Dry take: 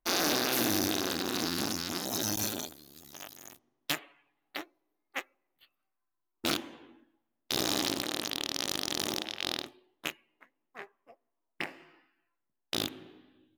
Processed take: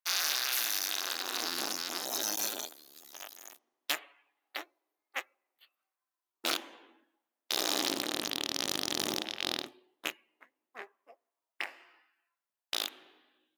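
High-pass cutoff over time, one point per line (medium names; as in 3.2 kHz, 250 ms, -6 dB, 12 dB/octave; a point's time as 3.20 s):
0.79 s 1.4 kHz
1.58 s 490 Hz
7.57 s 490 Hz
8.29 s 130 Hz
9.55 s 130 Hz
10.06 s 280 Hz
10.78 s 280 Hz
11.65 s 700 Hz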